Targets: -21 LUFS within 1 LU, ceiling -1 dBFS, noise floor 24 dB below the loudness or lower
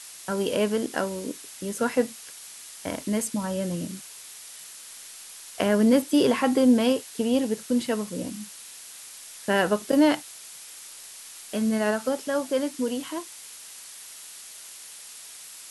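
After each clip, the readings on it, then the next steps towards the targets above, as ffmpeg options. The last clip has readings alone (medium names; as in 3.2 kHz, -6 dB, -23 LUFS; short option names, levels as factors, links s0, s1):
noise floor -44 dBFS; noise floor target -50 dBFS; loudness -25.5 LUFS; peak level -9.0 dBFS; loudness target -21.0 LUFS
-> -af "afftdn=nr=6:nf=-44"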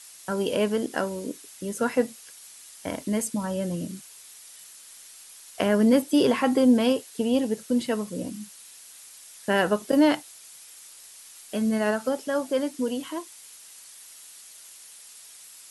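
noise floor -48 dBFS; noise floor target -50 dBFS
-> -af "afftdn=nr=6:nf=-48"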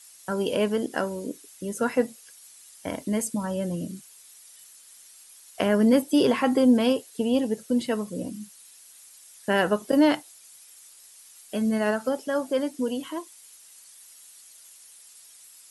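noise floor -51 dBFS; loudness -25.5 LUFS; peak level -9.0 dBFS; loudness target -21.0 LUFS
-> -af "volume=1.68"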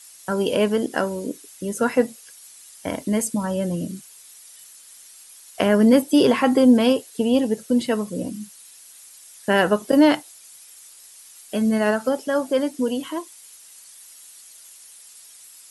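loudness -21.0 LUFS; peak level -4.5 dBFS; noise floor -47 dBFS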